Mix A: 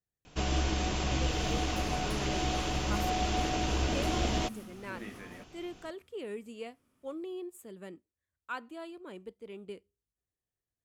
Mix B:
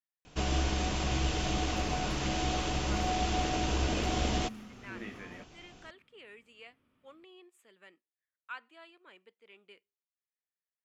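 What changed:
speech: add band-pass 2200 Hz, Q 1.2; second sound: add resonant high shelf 4500 Hz -12 dB, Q 1.5

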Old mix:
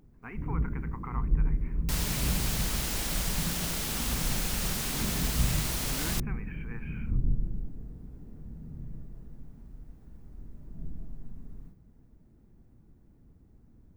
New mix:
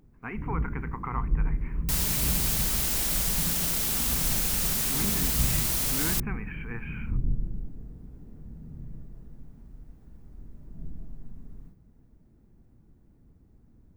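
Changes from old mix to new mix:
speech +6.5 dB; second sound: add high shelf 7600 Hz +10 dB

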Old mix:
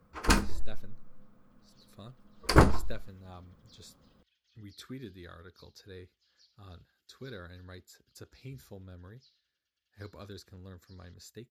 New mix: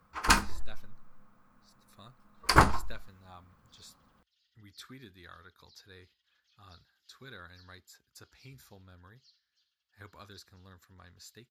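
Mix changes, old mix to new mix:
first sound +3.0 dB; second sound: entry +2.00 s; master: add resonant low shelf 680 Hz -7 dB, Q 1.5

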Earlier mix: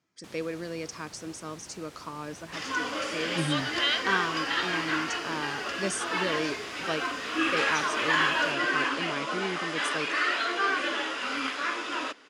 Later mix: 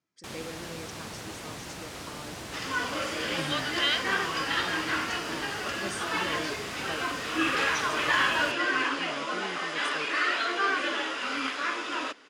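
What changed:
speech -7.5 dB; first sound +9.5 dB

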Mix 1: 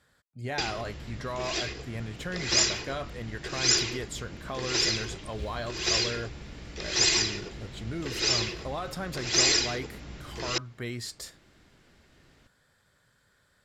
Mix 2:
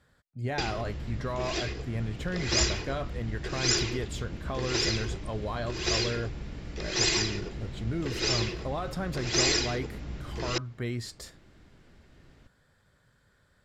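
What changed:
second sound: entry -2.80 s; master: add tilt -1.5 dB/oct

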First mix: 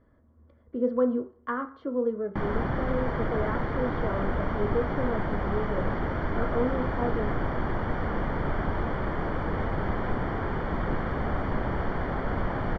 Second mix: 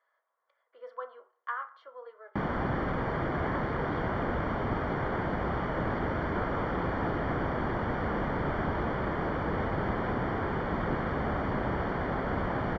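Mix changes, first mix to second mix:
speech: add Bessel high-pass 1100 Hz, order 6; master: add HPF 88 Hz 6 dB/oct

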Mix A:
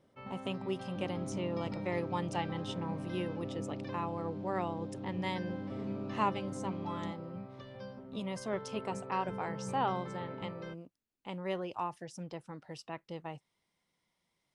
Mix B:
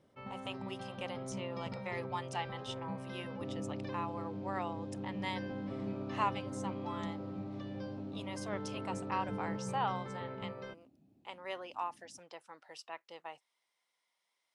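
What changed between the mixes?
speech: add HPF 690 Hz 12 dB/oct; second sound: entry +2.45 s

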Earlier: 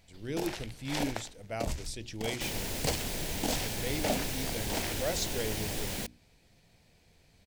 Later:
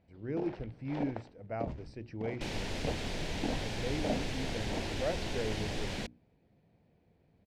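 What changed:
speech: add running mean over 13 samples; first sound: add band-pass 260 Hz, Q 0.54; master: add LPF 4400 Hz 12 dB/oct

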